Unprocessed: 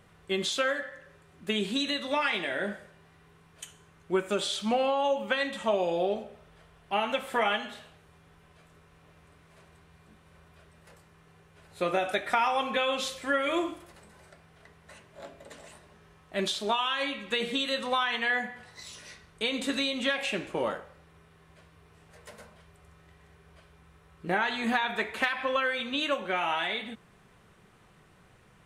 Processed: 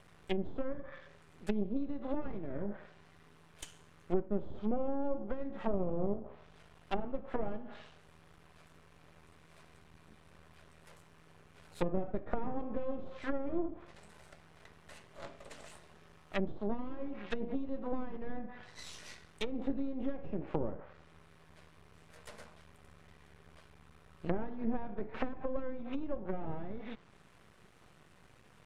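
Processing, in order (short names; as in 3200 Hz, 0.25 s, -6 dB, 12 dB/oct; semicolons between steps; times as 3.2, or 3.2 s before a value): half-wave rectifier; treble ducked by the level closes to 410 Hz, closed at -29.5 dBFS; gain +1.5 dB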